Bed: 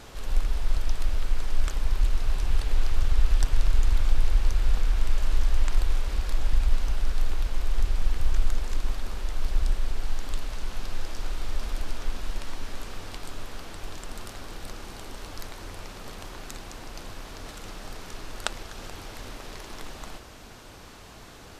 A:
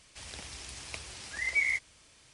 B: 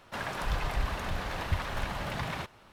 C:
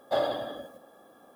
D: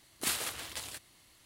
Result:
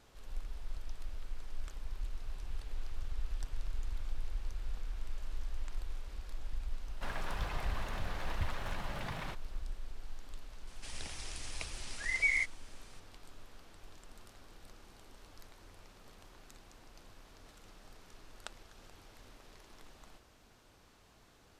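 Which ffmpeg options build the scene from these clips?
ffmpeg -i bed.wav -i cue0.wav -i cue1.wav -filter_complex "[0:a]volume=-17dB[link_01];[2:a]atrim=end=2.72,asetpts=PTS-STARTPTS,volume=-7dB,afade=type=in:duration=0.004:curve=hsin,afade=type=out:start_time=2.716:duration=0.004:curve=hsin,adelay=6890[link_02];[1:a]atrim=end=2.33,asetpts=PTS-STARTPTS,volume=-2dB,afade=type=in:duration=0.004:curve=hsin,afade=type=out:start_time=2.326:duration=0.004:curve=hsin,adelay=10670[link_03];[link_01][link_02][link_03]amix=inputs=3:normalize=0" out.wav

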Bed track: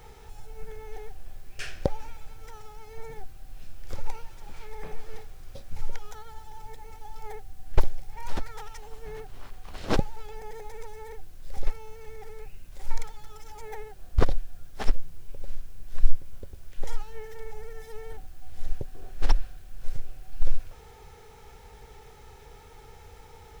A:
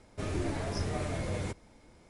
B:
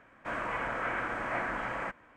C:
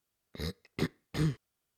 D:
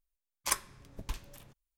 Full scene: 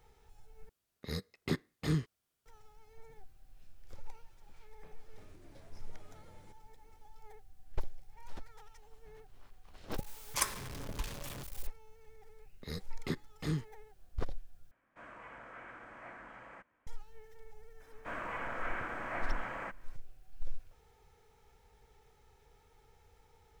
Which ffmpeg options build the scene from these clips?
ffmpeg -i bed.wav -i cue0.wav -i cue1.wav -i cue2.wav -i cue3.wav -filter_complex "[3:a]asplit=2[link_01][link_02];[2:a]asplit=2[link_03][link_04];[0:a]volume=-15.5dB[link_05];[1:a]acompressor=threshold=-40dB:ratio=6:attack=3.2:release=140:knee=1:detection=peak[link_06];[4:a]aeval=exprs='val(0)+0.5*0.0141*sgn(val(0))':channel_layout=same[link_07];[link_05]asplit=3[link_08][link_09][link_10];[link_08]atrim=end=0.694[link_11];[link_01]atrim=end=1.77,asetpts=PTS-STARTPTS,volume=-1.5dB[link_12];[link_09]atrim=start=2.456:end=14.714[link_13];[link_03]atrim=end=2.16,asetpts=PTS-STARTPTS,volume=-17dB[link_14];[link_10]atrim=start=16.866[link_15];[link_06]atrim=end=2.09,asetpts=PTS-STARTPTS,volume=-15dB,afade=type=in:duration=0.004:curve=hsin,afade=type=out:start_time=2.086:duration=0.004:curve=hsin,adelay=5000[link_16];[link_07]atrim=end=1.77,asetpts=PTS-STARTPTS,volume=-2.5dB,afade=type=in:duration=0.004:curve=hsin,afade=type=out:start_time=1.766:duration=0.004:curve=hsin,adelay=9900[link_17];[link_02]atrim=end=1.77,asetpts=PTS-STARTPTS,volume=-4.5dB,afade=type=in:duration=0.004:curve=hsin,afade=type=out:start_time=1.766:duration=0.004:curve=hsin,adelay=12280[link_18];[link_04]atrim=end=2.16,asetpts=PTS-STARTPTS,volume=-6dB,afade=type=in:duration=0.004:curve=hsin,afade=type=out:start_time=2.156:duration=0.004:curve=hsin,adelay=784980S[link_19];[link_11][link_12]acrossfade=duration=0.004:curve1=hsin:curve2=hsin[link_20];[link_20][link_13]acrossfade=duration=0.004:curve1=hsin:curve2=hsin[link_21];[link_21][link_14]acrossfade=duration=0.004:curve1=hsin:curve2=hsin[link_22];[link_22][link_15]acrossfade=duration=0.004:curve1=hsin:curve2=hsin[link_23];[link_23][link_16][link_17][link_18][link_19]amix=inputs=5:normalize=0" out.wav

